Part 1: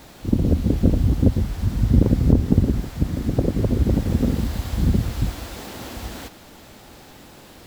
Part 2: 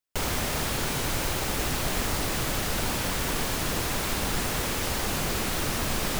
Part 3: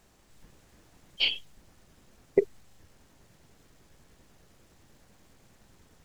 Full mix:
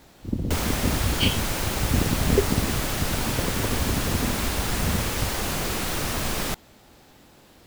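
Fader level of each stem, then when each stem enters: -8.0 dB, +1.0 dB, +0.5 dB; 0.00 s, 0.35 s, 0.00 s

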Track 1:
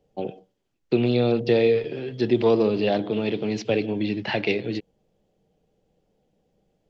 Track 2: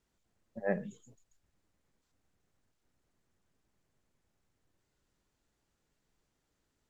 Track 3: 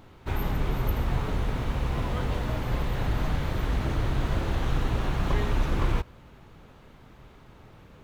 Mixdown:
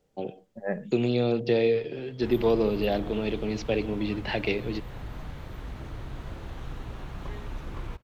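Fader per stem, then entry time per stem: -4.0 dB, +1.5 dB, -11.5 dB; 0.00 s, 0.00 s, 1.95 s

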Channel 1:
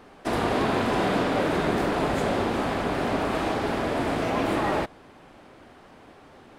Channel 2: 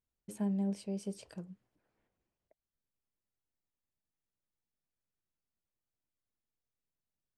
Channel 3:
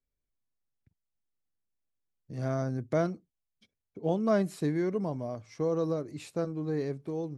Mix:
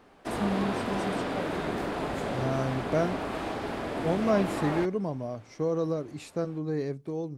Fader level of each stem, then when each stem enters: -7.0 dB, +2.5 dB, +1.0 dB; 0.00 s, 0.00 s, 0.00 s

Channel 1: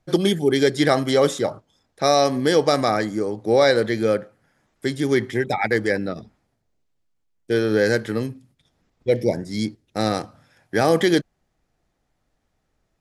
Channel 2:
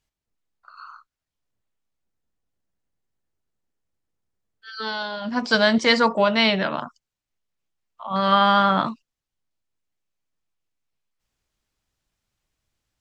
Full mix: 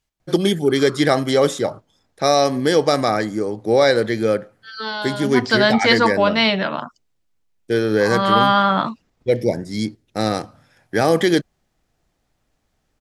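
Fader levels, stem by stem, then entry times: +1.5 dB, +2.0 dB; 0.20 s, 0.00 s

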